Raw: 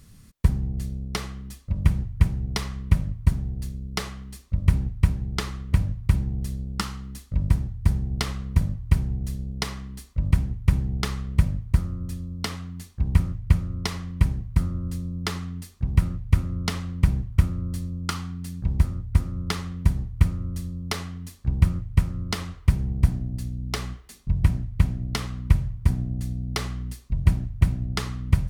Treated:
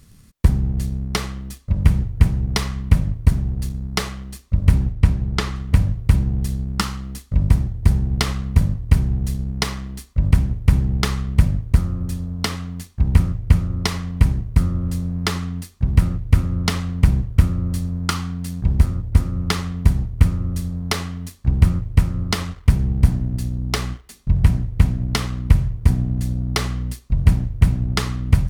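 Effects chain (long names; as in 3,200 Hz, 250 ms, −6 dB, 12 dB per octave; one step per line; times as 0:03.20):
leveller curve on the samples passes 1
0:04.92–0:05.56: high-shelf EQ 8,900 Hz −9.5 dB
level +3 dB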